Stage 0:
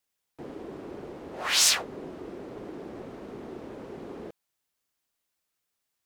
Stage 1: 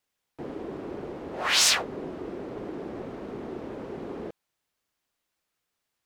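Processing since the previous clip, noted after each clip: treble shelf 5.6 kHz -8 dB; trim +4 dB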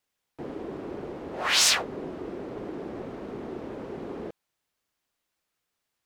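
no audible change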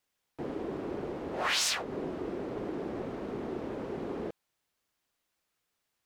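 compression 5:1, threshold -27 dBFS, peak gain reduction 9.5 dB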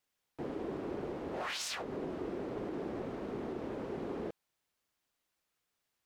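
peak limiter -27 dBFS, peak gain reduction 10.5 dB; trim -2.5 dB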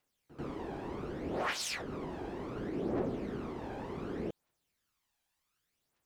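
phaser 0.67 Hz, delay 1.3 ms, feedback 56%; pre-echo 90 ms -15.5 dB

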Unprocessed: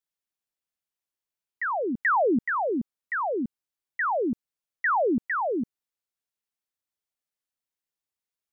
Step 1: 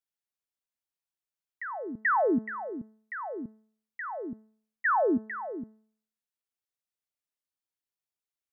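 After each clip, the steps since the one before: level held to a coarse grid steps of 12 dB; de-hum 217.5 Hz, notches 9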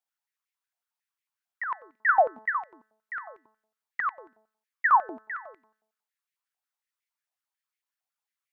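peak limiter -22 dBFS, peak gain reduction 3 dB; step-sequenced high-pass 11 Hz 740–2100 Hz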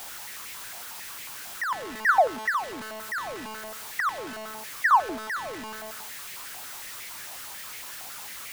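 jump at every zero crossing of -31.5 dBFS

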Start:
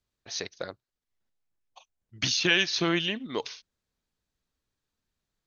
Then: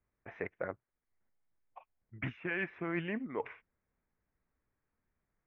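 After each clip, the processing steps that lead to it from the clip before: elliptic low-pass 2.2 kHz, stop band 50 dB; reverse; compression 6:1, threshold -35 dBFS, peak gain reduction 13 dB; reverse; trim +2 dB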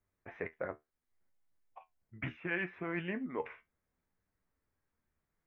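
flange 0.69 Hz, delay 9.9 ms, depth 3.7 ms, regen +59%; trim +3.5 dB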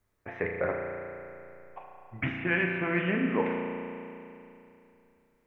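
spring tank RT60 2.8 s, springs 34 ms, chirp 45 ms, DRR 1 dB; trim +8 dB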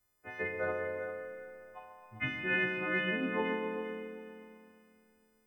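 partials quantised in pitch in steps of 3 st; multi-head delay 132 ms, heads all three, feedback 41%, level -12 dB; trim -6.5 dB

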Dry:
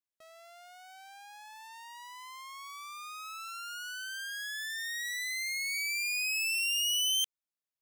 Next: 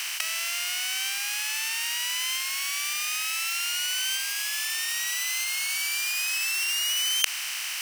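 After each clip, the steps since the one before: spectral levelling over time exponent 0.2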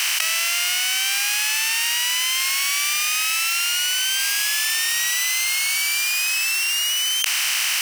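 level flattener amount 100%; trim -1 dB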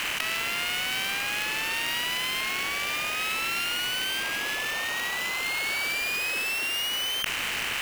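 median filter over 9 samples; trim -2.5 dB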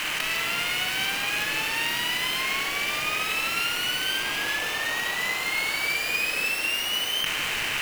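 reverberation RT60 2.2 s, pre-delay 6 ms, DRR 2 dB

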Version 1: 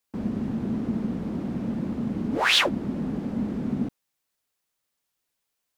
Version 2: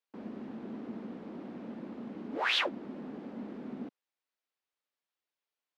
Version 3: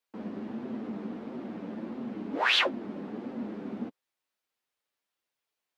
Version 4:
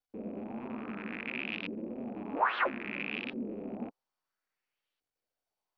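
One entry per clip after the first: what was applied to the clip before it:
three-band isolator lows -23 dB, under 240 Hz, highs -15 dB, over 4.7 kHz; trim -8 dB
flange 1.5 Hz, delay 7.5 ms, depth 3.2 ms, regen -14%; trim +8 dB
rattle on loud lows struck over -47 dBFS, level -24 dBFS; LFO low-pass saw up 0.6 Hz 380–3700 Hz; trim -4.5 dB; MP2 48 kbps 48 kHz

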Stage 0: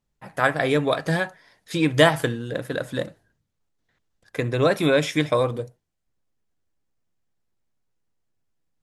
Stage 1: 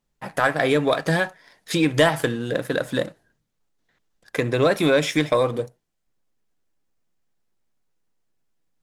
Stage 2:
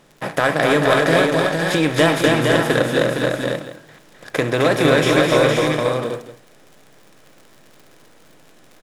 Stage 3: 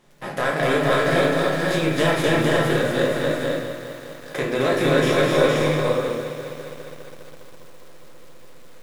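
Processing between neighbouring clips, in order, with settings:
peaking EQ 82 Hz -12.5 dB 0.85 oct; compression 1.5:1, threshold -36 dBFS, peak gain reduction 9.5 dB; waveshaping leveller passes 1; trim +5 dB
spectral levelling over time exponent 0.6; crackle 37 per s -34 dBFS; multi-tap echo 258/462/534/697 ms -3.5/-4.5/-5.5/-16 dB; trim -1 dB
simulated room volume 70 m³, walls mixed, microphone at 0.91 m; bit-crushed delay 204 ms, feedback 80%, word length 5-bit, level -13.5 dB; trim -8.5 dB

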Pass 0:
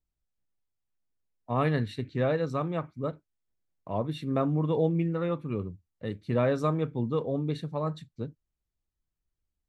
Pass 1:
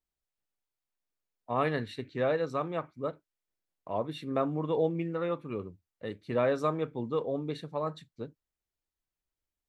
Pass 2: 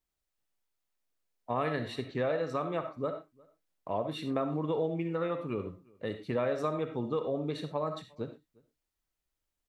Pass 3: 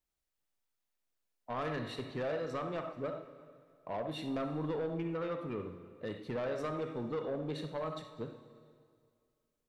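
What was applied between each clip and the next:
tone controls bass -10 dB, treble -2 dB
reverberation, pre-delay 20 ms, DRR 8 dB; compression 2.5:1, threshold -33 dBFS, peak gain reduction 7.5 dB; echo from a far wall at 61 m, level -27 dB; trim +3 dB
saturation -28.5 dBFS, distortion -13 dB; plate-style reverb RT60 2.2 s, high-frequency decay 0.9×, DRR 10 dB; trim -2.5 dB

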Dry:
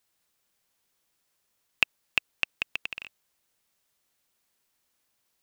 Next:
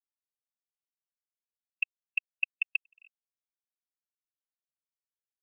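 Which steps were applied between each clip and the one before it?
level held to a coarse grid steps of 16 dB; spectral contrast expander 2.5:1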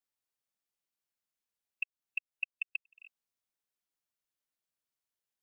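compression, threshold -37 dBFS, peak gain reduction 13 dB; trim +3.5 dB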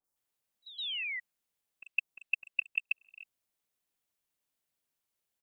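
painted sound fall, 0.62–1.04 s, 1.9–4 kHz -41 dBFS; three bands offset in time lows, highs, mids 40/160 ms, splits 1.4/5.1 kHz; trim +6 dB

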